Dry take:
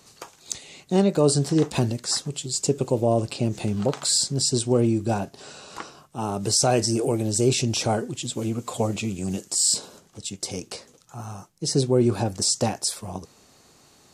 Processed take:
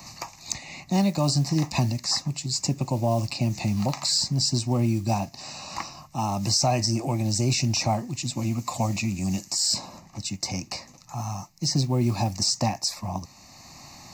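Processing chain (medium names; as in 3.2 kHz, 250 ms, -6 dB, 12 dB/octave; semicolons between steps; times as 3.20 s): static phaser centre 2.2 kHz, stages 8; modulation noise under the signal 33 dB; three bands compressed up and down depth 40%; trim +2.5 dB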